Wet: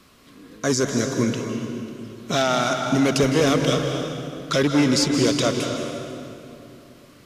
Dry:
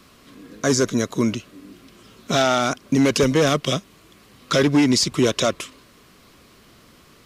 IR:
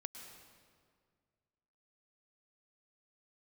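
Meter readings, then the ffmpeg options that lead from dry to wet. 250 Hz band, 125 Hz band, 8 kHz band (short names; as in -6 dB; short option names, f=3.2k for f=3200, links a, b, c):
-0.5 dB, +0.5 dB, -1.0 dB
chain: -filter_complex "[1:a]atrim=start_sample=2205,asetrate=28224,aresample=44100[a];[0:a][a]afir=irnorm=-1:irlink=0"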